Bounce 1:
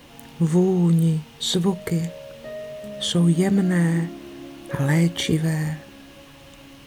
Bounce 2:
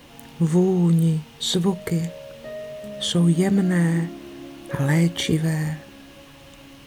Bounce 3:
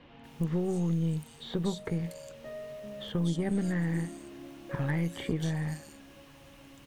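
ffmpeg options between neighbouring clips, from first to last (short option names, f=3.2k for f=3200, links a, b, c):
-af anull
-filter_complex "[0:a]acrossover=split=3700[a][b];[b]adelay=240[c];[a][c]amix=inputs=2:normalize=0,acrossover=split=2000|7000[d][e][f];[d]acompressor=threshold=-19dB:ratio=4[g];[e]acompressor=threshold=-39dB:ratio=4[h];[f]acompressor=threshold=-51dB:ratio=4[i];[g][h][i]amix=inputs=3:normalize=0,aeval=exprs='0.266*(cos(1*acos(clip(val(0)/0.266,-1,1)))-cos(1*PI/2))+0.0211*(cos(4*acos(clip(val(0)/0.266,-1,1)))-cos(4*PI/2))':c=same,volume=-7.5dB"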